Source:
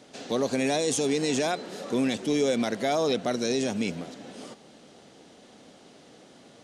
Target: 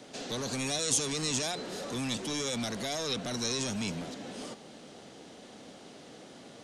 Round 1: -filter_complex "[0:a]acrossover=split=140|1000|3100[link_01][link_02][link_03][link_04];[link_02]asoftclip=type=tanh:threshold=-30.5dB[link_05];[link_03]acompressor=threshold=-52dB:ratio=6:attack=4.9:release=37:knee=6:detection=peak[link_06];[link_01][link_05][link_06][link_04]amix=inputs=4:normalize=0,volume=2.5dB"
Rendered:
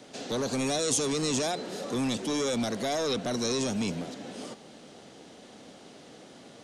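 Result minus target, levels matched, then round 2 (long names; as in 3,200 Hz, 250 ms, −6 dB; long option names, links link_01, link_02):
soft clipping: distortion −5 dB
-filter_complex "[0:a]acrossover=split=140|1000|3100[link_01][link_02][link_03][link_04];[link_02]asoftclip=type=tanh:threshold=-39.5dB[link_05];[link_03]acompressor=threshold=-52dB:ratio=6:attack=4.9:release=37:knee=6:detection=peak[link_06];[link_01][link_05][link_06][link_04]amix=inputs=4:normalize=0,volume=2.5dB"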